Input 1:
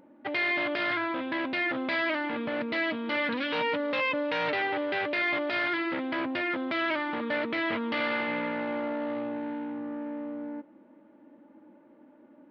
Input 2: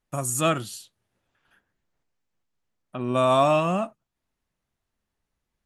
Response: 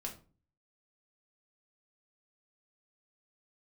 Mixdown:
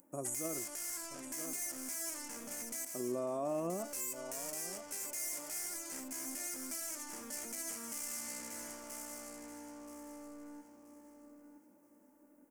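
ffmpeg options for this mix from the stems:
-filter_complex "[0:a]asoftclip=type=tanh:threshold=-35.5dB,volume=-15dB,asplit=3[a][b][c];[a]atrim=end=2.85,asetpts=PTS-STARTPTS,afade=t=out:st=2.846:d=0.004:c=hsin[d];[b]atrim=start=2.85:end=3.79,asetpts=PTS-STARTPTS,volume=0[e];[c]atrim=start=3.79,asetpts=PTS-STARTPTS,afade=t=in:d=0.004:c=hsin[f];[d][e][f]concat=n=3:v=0:a=1,asplit=3[g][h][i];[h]volume=-4dB[j];[i]volume=-5.5dB[k];[1:a]bandpass=f=390:t=q:w=2.3:csg=0,volume=-3.5dB,asplit=2[l][m];[m]volume=-14.5dB[n];[2:a]atrim=start_sample=2205[o];[j][o]afir=irnorm=-1:irlink=0[p];[k][n]amix=inputs=2:normalize=0,aecho=0:1:977|1954|2931|3908:1|0.25|0.0625|0.0156[q];[g][l][p][q]amix=inputs=4:normalize=0,aexciter=amount=15.4:drive=8.9:freq=5.9k,alimiter=level_in=4.5dB:limit=-24dB:level=0:latency=1:release=83,volume=-4.5dB"

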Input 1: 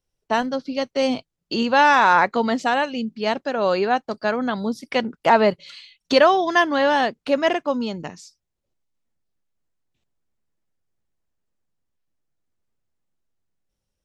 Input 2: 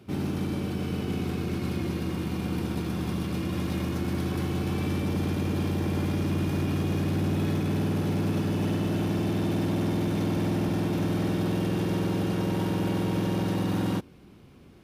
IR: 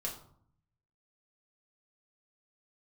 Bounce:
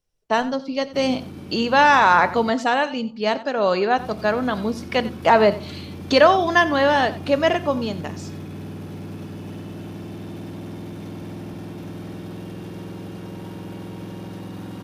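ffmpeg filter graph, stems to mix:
-filter_complex "[0:a]volume=-0.5dB,asplit=3[a][b][c];[b]volume=-12dB[d];[c]volume=-16dB[e];[1:a]adelay=850,volume=-7.5dB,asplit=3[f][g][h];[f]atrim=end=2.5,asetpts=PTS-STARTPTS,afade=t=out:st=2.496:d=0.004:c=hsin[i];[g]atrim=start=2.5:end=3.98,asetpts=PTS-STARTPTS,volume=0[j];[h]atrim=start=3.98,asetpts=PTS-STARTPTS,afade=t=in:d=0.004:c=hsin[k];[i][j][k]concat=n=3:v=0:a=1[l];[2:a]atrim=start_sample=2205[m];[d][m]afir=irnorm=-1:irlink=0[n];[e]aecho=0:1:91:1[o];[a][l][n][o]amix=inputs=4:normalize=0"

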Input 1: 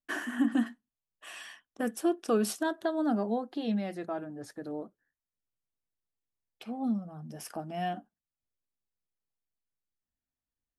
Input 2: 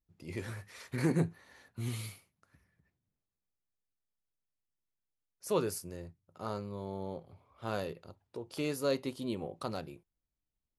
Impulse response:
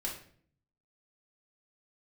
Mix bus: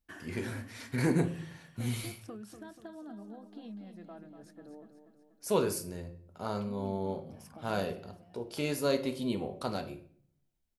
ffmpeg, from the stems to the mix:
-filter_complex "[0:a]equalizer=f=190:w=3.1:g=11,bandreject=f=50:t=h:w=6,bandreject=f=100:t=h:w=6,bandreject=f=150:t=h:w=6,acompressor=threshold=-32dB:ratio=6,volume=-12dB,asplit=2[a][b];[b]volume=-9dB[c];[1:a]bandreject=f=1.2k:w=20,volume=0dB,asplit=2[d][e];[e]volume=-4dB[f];[2:a]atrim=start_sample=2205[g];[f][g]afir=irnorm=-1:irlink=0[h];[c]aecho=0:1:242|484|726|968|1210|1452|1694|1936:1|0.53|0.281|0.149|0.0789|0.0418|0.0222|0.0117[i];[a][d][h][i]amix=inputs=4:normalize=0"

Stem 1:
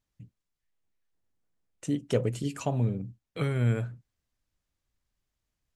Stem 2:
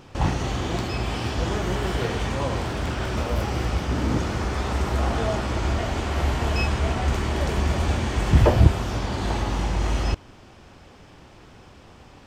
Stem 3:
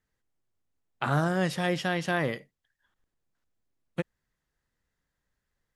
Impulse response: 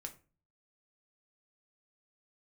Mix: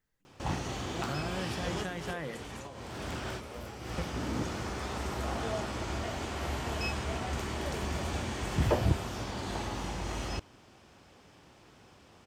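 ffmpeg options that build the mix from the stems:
-filter_complex "[0:a]highpass=f=200:w=0.5412,highpass=f=200:w=1.3066,aemphasis=mode=production:type=bsi,volume=-19.5dB,asplit=2[a][b];[1:a]highpass=f=110:p=1,highshelf=f=5.9k:g=6,adelay=250,volume=-8.5dB[c];[2:a]acompressor=threshold=-38dB:ratio=2.5,volume=-3.5dB,asplit=2[d][e];[e]volume=-5.5dB[f];[b]apad=whole_len=551918[g];[c][g]sidechaincompress=threshold=-57dB:ratio=12:attack=7.6:release=254[h];[3:a]atrim=start_sample=2205[i];[f][i]afir=irnorm=-1:irlink=0[j];[a][h][d][j]amix=inputs=4:normalize=0"

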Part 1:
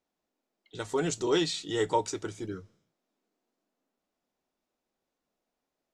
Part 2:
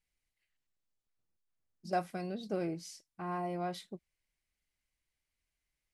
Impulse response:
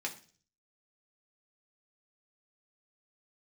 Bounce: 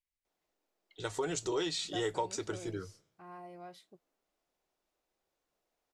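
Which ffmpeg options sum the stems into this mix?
-filter_complex "[0:a]equalizer=f=250:t=o:w=0.24:g=-7.5,acompressor=threshold=-31dB:ratio=4,adelay=250,volume=0.5dB[a];[1:a]volume=-11dB[b];[a][b]amix=inputs=2:normalize=0,equalizer=f=200:t=o:w=0.74:g=-6.5"

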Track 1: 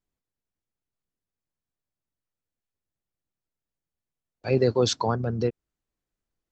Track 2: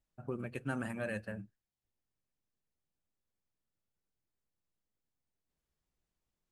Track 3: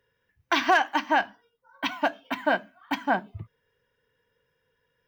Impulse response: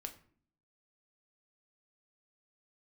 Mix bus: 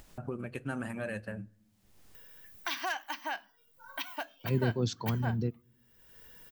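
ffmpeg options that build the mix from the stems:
-filter_complex "[0:a]highpass=130,asubboost=boost=7.5:cutoff=220,volume=-13.5dB,asplit=2[a][b];[b]volume=-15dB[c];[1:a]volume=-1dB,asplit=2[d][e];[e]volume=-11dB[f];[2:a]aemphasis=mode=production:type=riaa,adelay=2150,volume=-14.5dB[g];[3:a]atrim=start_sample=2205[h];[c][f]amix=inputs=2:normalize=0[i];[i][h]afir=irnorm=-1:irlink=0[j];[a][d][g][j]amix=inputs=4:normalize=0,acompressor=mode=upward:threshold=-33dB:ratio=2.5"

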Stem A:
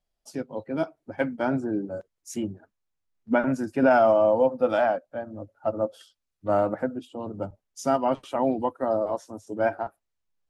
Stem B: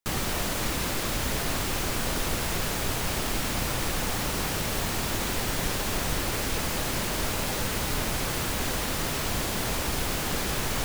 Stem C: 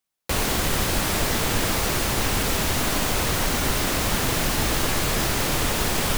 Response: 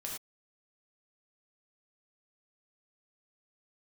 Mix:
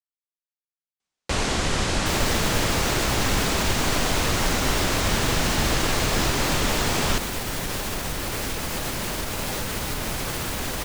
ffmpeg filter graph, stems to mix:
-filter_complex "[1:a]alimiter=limit=-19.5dB:level=0:latency=1:release=55,adelay=2000,volume=1.5dB[a];[2:a]lowpass=f=8.1k:w=0.5412,lowpass=f=8.1k:w=1.3066,adelay=1000,volume=0dB[b];[a][b]amix=inputs=2:normalize=0"

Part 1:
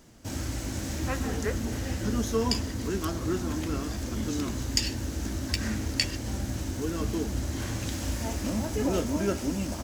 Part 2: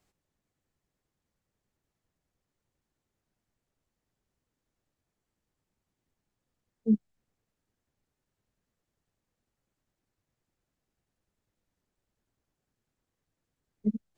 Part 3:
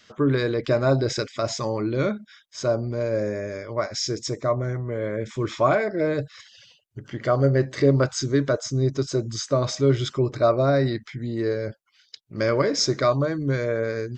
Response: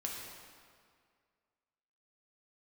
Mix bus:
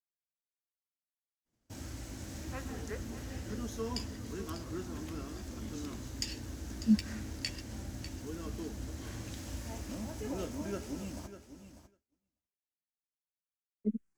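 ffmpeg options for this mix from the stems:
-filter_complex "[0:a]adelay=1450,volume=-11dB,asplit=2[a][b];[b]volume=-12dB[c];[1:a]asplit=2[d][e];[e]afreqshift=-0.94[f];[d][f]amix=inputs=2:normalize=1,volume=0dB[g];[c]aecho=0:1:597|1194|1791:1|0.18|0.0324[h];[a][g][h]amix=inputs=3:normalize=0,agate=range=-33dB:threshold=-54dB:ratio=3:detection=peak"

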